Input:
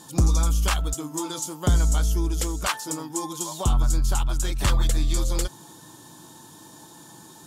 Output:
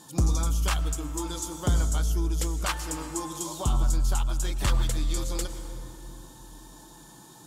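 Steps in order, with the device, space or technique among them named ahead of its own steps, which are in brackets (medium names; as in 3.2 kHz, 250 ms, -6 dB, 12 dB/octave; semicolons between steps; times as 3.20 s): compressed reverb return (on a send at -7 dB: reverberation RT60 2.4 s, pre-delay 95 ms + compression, threshold -21 dBFS, peak gain reduction 10 dB); on the sum: trim -4 dB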